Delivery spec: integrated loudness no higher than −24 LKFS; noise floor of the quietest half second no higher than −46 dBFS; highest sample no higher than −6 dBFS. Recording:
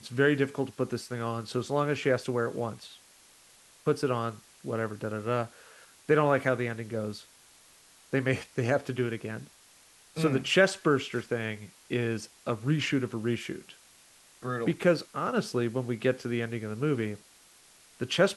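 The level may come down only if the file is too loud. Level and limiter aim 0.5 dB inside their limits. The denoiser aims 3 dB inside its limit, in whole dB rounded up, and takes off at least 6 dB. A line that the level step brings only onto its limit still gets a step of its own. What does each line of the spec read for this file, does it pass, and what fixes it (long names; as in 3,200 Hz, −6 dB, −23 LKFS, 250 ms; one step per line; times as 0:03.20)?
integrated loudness −30.0 LKFS: in spec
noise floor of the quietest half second −58 dBFS: in spec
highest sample −10.0 dBFS: in spec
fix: no processing needed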